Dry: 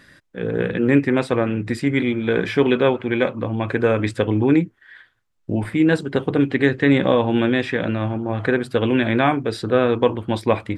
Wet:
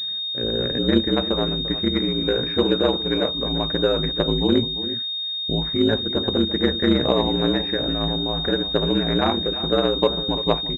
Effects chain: ring modulator 56 Hz; echo from a far wall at 59 m, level -13 dB; class-D stage that switches slowly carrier 3.7 kHz

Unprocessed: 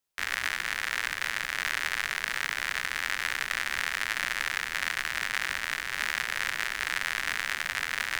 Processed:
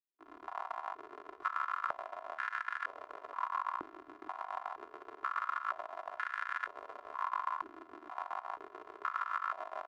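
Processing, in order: fade-in on the opening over 1.22 s; tempo 0.83×; comb 1.9 ms, depth 89%; on a send: feedback delay 423 ms, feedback 21%, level -14 dB; on the sum: square tremolo 7.1 Hz, depth 60%, duty 65%; FDN reverb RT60 0.86 s, low-frequency decay 1×, high-frequency decay 0.5×, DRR 17 dB; compression 4:1, threshold -36 dBFS, peak gain reduction 12.5 dB; pitch shift -7.5 st; gain riding within 4 dB 0.5 s; step-sequenced band-pass 2.1 Hz 320–1600 Hz; trim +8.5 dB

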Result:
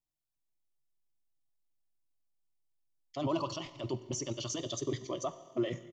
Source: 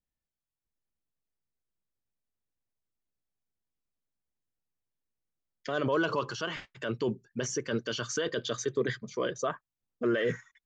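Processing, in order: static phaser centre 310 Hz, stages 8; Schroeder reverb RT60 2.7 s, combs from 33 ms, DRR 12.5 dB; tempo 1.8×

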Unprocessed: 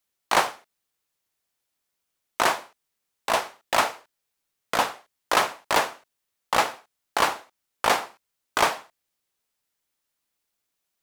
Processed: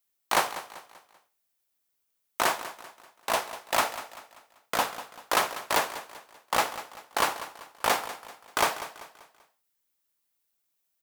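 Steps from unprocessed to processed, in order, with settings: treble shelf 11 kHz +10.5 dB; feedback delay 194 ms, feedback 41%, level -14 dB; trim -4 dB

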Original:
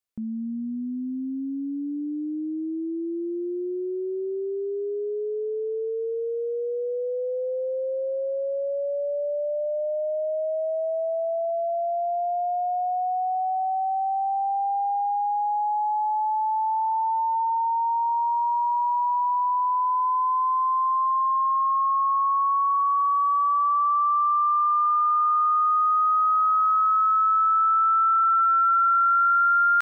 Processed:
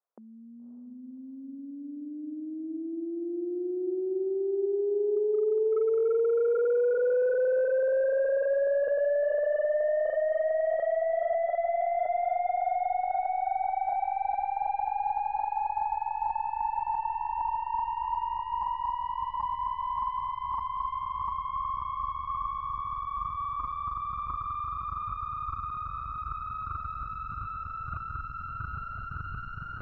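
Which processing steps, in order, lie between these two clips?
tracing distortion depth 0.11 ms; high-pass 470 Hz 24 dB/octave; on a send: echo that smears into a reverb 574 ms, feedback 44%, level -9 dB; on the sum: wavefolder -28 dBFS; low-pass 1.2 kHz 24 dB/octave; trim +7 dB

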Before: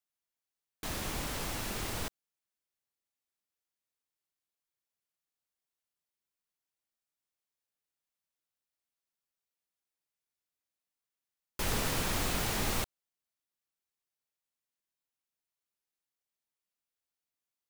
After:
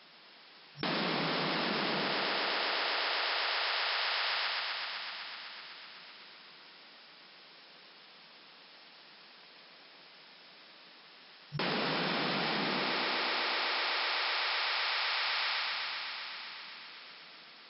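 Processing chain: thinning echo 126 ms, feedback 84%, high-pass 220 Hz, level -7.5 dB; FFT band-pass 140–5400 Hz; level flattener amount 100%

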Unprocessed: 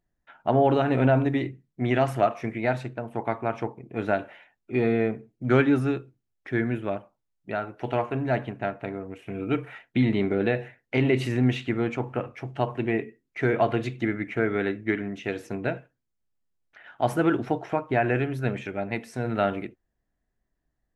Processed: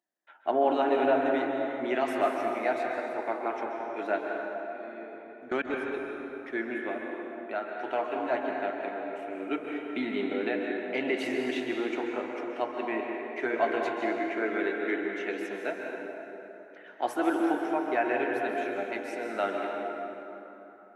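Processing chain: high-pass 300 Hz 24 dB/octave; band-stop 460 Hz, Q 15; 4.18–5.94 s: level held to a coarse grid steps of 22 dB; flange 0.18 Hz, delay 1 ms, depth 10 ms, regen -56%; plate-style reverb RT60 3.6 s, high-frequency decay 0.55×, pre-delay 120 ms, DRR 0.5 dB

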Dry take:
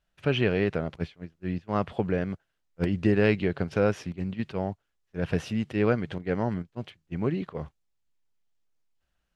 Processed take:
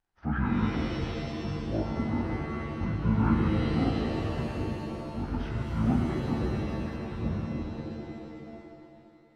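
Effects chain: frequency-domain pitch shifter -11 st; pitch-shifted reverb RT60 2.4 s, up +7 st, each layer -2 dB, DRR 2 dB; trim -4 dB

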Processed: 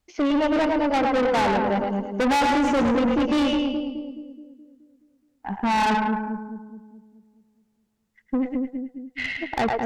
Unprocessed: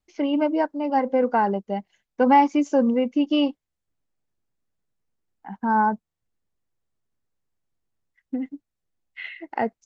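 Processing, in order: two-band feedback delay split 410 Hz, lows 212 ms, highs 108 ms, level -5 dB; valve stage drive 27 dB, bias 0.45; trim +8.5 dB

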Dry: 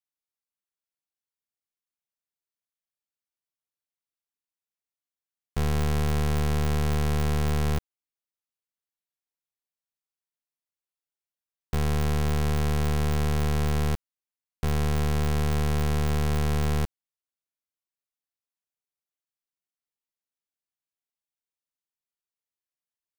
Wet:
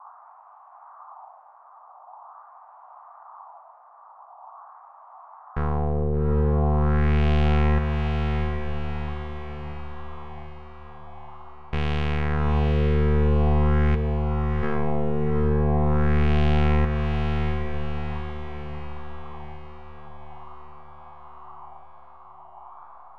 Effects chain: band noise 700–1200 Hz -51 dBFS; LFO low-pass sine 0.44 Hz 430–2900 Hz; echo that smears into a reverb 780 ms, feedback 53%, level -3.5 dB

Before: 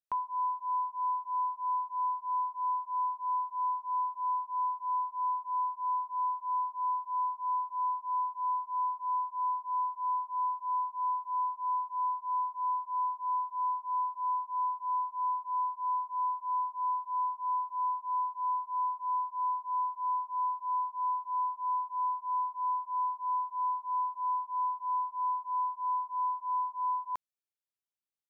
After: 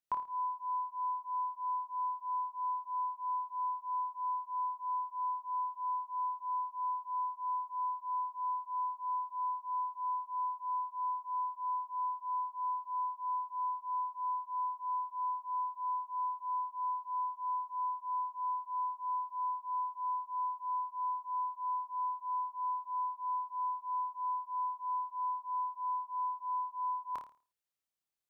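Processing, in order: flutter echo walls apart 4.7 m, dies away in 0.36 s

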